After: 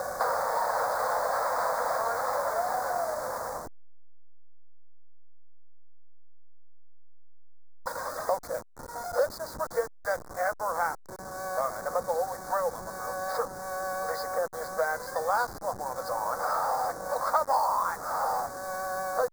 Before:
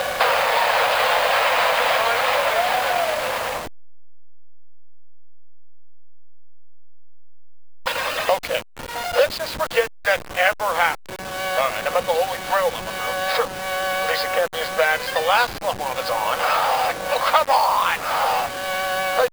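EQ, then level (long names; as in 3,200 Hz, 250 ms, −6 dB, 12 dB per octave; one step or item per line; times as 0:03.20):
Chebyshev band-stop filter 1,300–5,900 Hz, order 2
−8.0 dB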